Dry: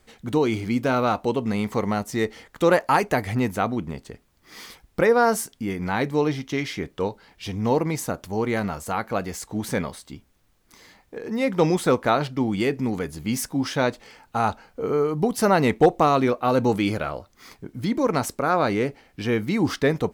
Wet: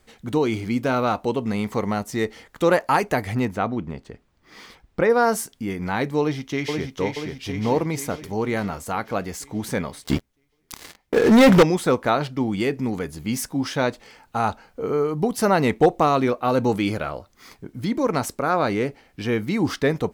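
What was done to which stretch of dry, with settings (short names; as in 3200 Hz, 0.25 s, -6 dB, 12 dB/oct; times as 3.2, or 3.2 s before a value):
3.45–5.1 bell 14000 Hz -13.5 dB 1.6 oct
6.2–6.97 echo throw 0.48 s, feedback 60%, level -4 dB
10.04–11.63 sample leveller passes 5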